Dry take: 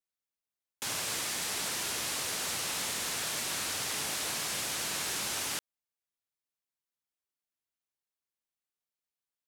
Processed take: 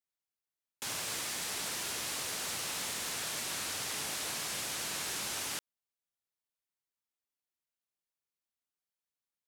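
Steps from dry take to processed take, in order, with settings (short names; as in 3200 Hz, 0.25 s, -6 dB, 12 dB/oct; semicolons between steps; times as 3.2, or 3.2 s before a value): 0.87–3.13 short-mantissa float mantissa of 2-bit; gain -3 dB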